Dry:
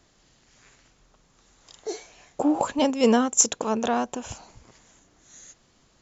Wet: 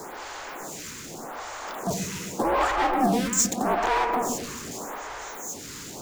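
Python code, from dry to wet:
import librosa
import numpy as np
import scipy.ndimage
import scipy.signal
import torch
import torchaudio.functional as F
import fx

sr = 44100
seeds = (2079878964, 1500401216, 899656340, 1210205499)

y = scipy.signal.sosfilt(scipy.signal.butter(4, 480.0, 'highpass', fs=sr, output='sos'), x)
y = fx.peak_eq(y, sr, hz=3400.0, db=-13.5, octaves=2.5)
y = y * np.sin(2.0 * np.pi * 250.0 * np.arange(len(y)) / sr)
y = fx.power_curve(y, sr, exponent=0.35)
y = fx.echo_bbd(y, sr, ms=129, stages=2048, feedback_pct=60, wet_db=-5)
y = fx.stagger_phaser(y, sr, hz=0.83)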